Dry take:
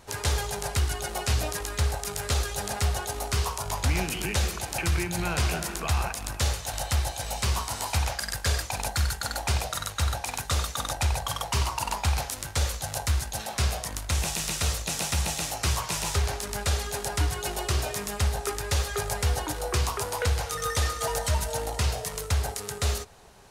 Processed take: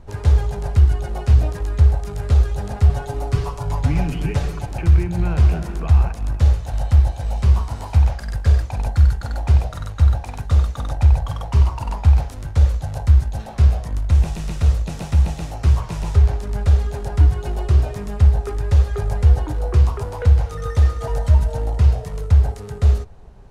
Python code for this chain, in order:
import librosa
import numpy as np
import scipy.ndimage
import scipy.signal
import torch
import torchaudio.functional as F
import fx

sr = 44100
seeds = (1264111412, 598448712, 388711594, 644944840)

y = fx.tilt_eq(x, sr, slope=-4.0)
y = fx.comb(y, sr, ms=7.0, depth=0.81, at=(2.89, 4.66))
y = y * librosa.db_to_amplitude(-1.5)